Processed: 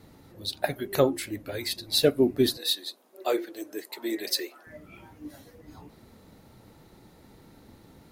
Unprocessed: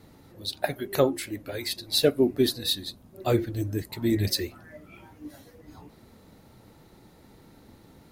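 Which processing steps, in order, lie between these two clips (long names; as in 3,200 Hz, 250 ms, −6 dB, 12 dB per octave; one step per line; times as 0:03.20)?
0:02.57–0:04.67: high-pass filter 370 Hz 24 dB per octave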